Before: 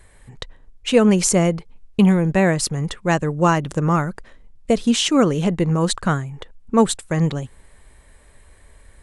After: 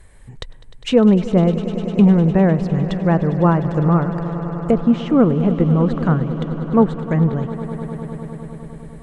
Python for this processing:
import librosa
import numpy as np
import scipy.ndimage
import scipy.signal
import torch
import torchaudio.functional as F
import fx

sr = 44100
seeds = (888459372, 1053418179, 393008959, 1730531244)

p1 = fx.env_lowpass_down(x, sr, base_hz=1300.0, full_db=-15.5)
p2 = fx.low_shelf(p1, sr, hz=330.0, db=5.5)
p3 = p2 + fx.echo_swell(p2, sr, ms=101, loudest=5, wet_db=-17.0, dry=0)
y = p3 * librosa.db_to_amplitude(-1.0)